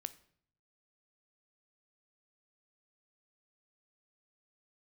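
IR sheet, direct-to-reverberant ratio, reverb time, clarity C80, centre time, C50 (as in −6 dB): 13.0 dB, 0.60 s, 21.0 dB, 3 ms, 17.5 dB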